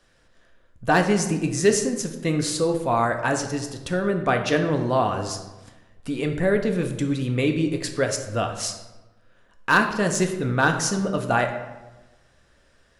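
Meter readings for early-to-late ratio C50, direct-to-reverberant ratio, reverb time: 8.0 dB, 4.0 dB, 1.1 s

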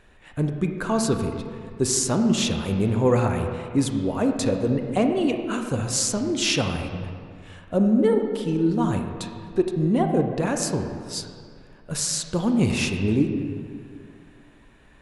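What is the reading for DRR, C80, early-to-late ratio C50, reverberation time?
4.5 dB, 6.5 dB, 5.5 dB, 2.2 s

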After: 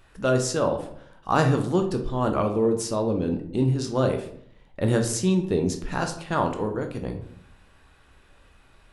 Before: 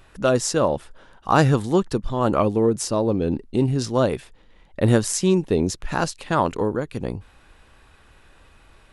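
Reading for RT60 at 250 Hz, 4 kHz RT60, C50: 0.80 s, 0.40 s, 9.0 dB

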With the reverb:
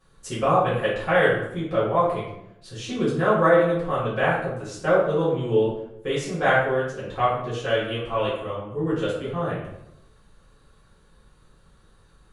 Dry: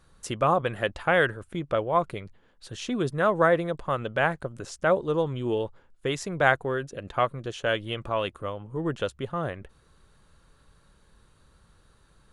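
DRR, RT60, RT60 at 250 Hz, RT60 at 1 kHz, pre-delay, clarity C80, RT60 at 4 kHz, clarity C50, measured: −11.0 dB, 0.80 s, 0.95 s, 0.75 s, 3 ms, 6.0 dB, 0.55 s, 2.0 dB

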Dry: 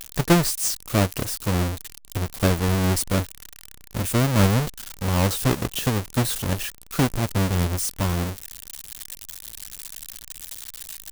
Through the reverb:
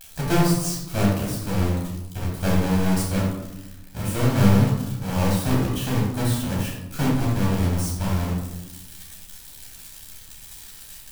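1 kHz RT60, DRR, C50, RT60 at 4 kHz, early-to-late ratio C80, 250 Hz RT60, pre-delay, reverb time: 0.95 s, −5.5 dB, 1.0 dB, 0.55 s, 4.5 dB, 1.5 s, 12 ms, 1.0 s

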